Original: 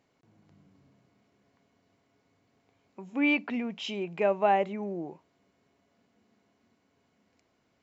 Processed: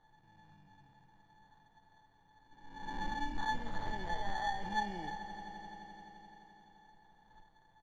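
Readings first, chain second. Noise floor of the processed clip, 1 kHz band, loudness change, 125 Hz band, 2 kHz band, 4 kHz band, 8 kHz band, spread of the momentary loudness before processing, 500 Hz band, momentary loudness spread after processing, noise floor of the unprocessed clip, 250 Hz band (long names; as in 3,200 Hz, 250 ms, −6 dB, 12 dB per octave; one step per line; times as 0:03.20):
−68 dBFS, −5.0 dB, −11.5 dB, −3.0 dB, −7.0 dB, −6.0 dB, can't be measured, 12 LU, −20.0 dB, 18 LU, −73 dBFS, −14.5 dB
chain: peak hold with a rise ahead of every peak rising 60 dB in 1.05 s
high-shelf EQ 3,900 Hz +8 dB
notch filter 600 Hz, Q 12
comb filter 6.2 ms, depth 45%
in parallel at +3 dB: compressor whose output falls as the input rises −32 dBFS
on the sum: brickwall limiter −19 dBFS, peak gain reduction 10 dB
tuned comb filter 870 Hz, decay 0.29 s, mix 100%
sample-rate reduction 2,600 Hz, jitter 0%
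high-frequency loss of the air 180 metres
on a send: echo that builds up and dies away 86 ms, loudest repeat 5, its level −17.5 dB
on the sum: level +15.5 dB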